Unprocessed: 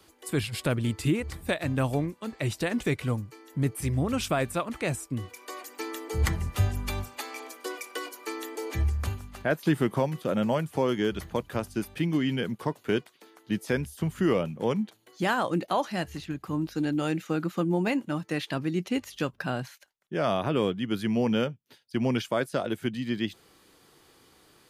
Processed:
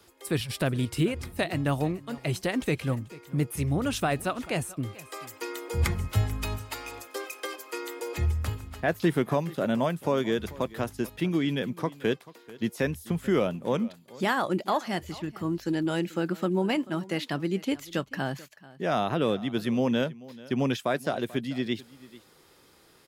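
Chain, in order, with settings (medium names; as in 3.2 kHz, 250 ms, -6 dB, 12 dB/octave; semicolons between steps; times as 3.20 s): delay 468 ms -20 dB; tape speed +7%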